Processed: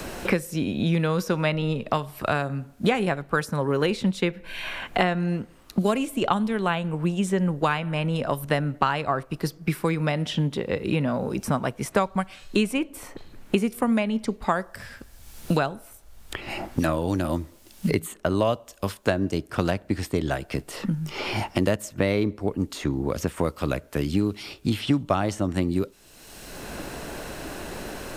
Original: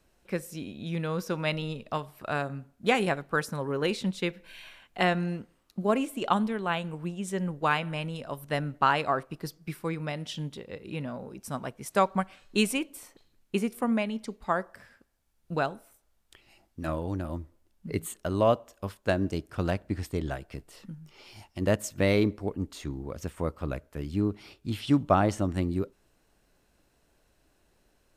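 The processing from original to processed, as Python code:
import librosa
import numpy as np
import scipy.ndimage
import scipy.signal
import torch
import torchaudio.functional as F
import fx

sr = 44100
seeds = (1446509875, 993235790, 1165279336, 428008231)

y = fx.band_squash(x, sr, depth_pct=100)
y = y * 10.0 ** (4.5 / 20.0)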